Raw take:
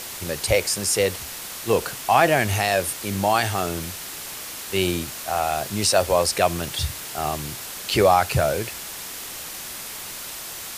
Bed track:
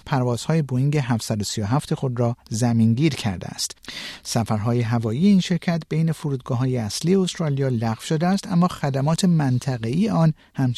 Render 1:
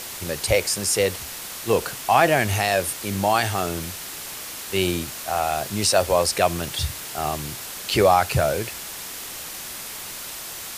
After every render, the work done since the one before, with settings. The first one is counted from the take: no audible change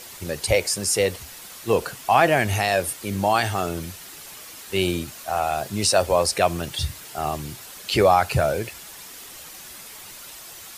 noise reduction 8 dB, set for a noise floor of -35 dBFS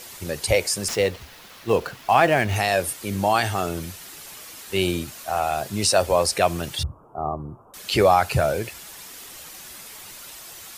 0.88–2.56 s: median filter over 5 samples; 6.83–7.74 s: elliptic low-pass 1.2 kHz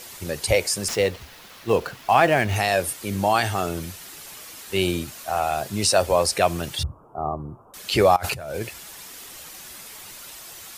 8.16–8.61 s: compressor with a negative ratio -31 dBFS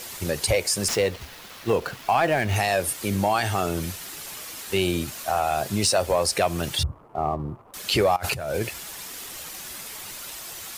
compression 2:1, threshold -25 dBFS, peak gain reduction 7.5 dB; waveshaping leveller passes 1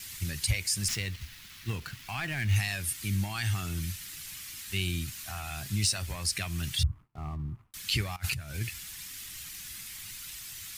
FFT filter 110 Hz 0 dB, 320 Hz -15 dB, 510 Hz -29 dB, 2 kHz -5 dB; gate with hold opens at -44 dBFS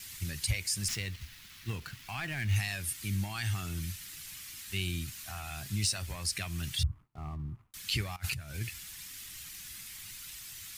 trim -3 dB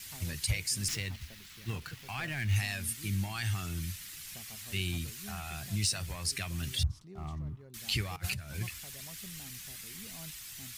add bed track -32 dB

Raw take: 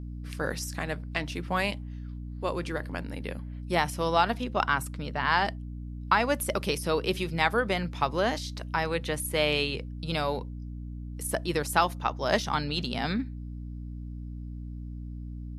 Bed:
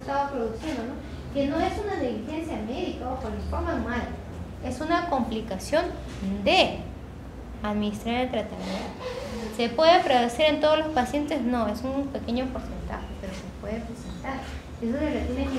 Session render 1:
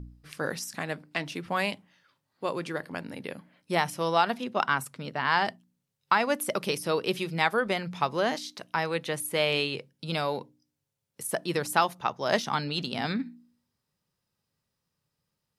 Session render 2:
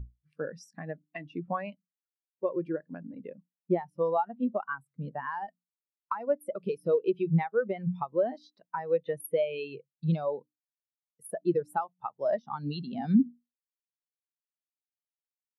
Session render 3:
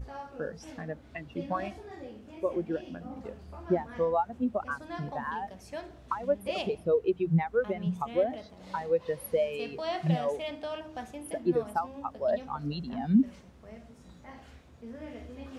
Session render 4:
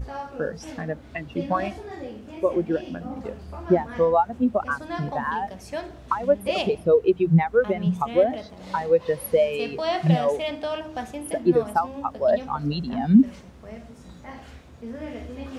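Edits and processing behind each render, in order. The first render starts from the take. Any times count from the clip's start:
de-hum 60 Hz, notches 5
compression 8:1, threshold -30 dBFS, peak gain reduction 13 dB; spectral contrast expander 2.5:1
add bed -16 dB
trim +8 dB

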